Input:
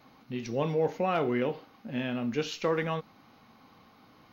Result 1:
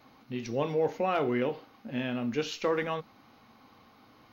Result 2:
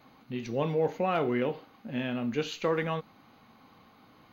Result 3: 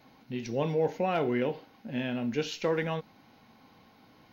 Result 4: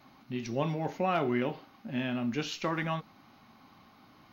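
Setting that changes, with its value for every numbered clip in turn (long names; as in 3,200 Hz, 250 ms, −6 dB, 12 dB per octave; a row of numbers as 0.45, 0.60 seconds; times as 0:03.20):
notch filter, centre frequency: 170, 5,400, 1,200, 480 Hertz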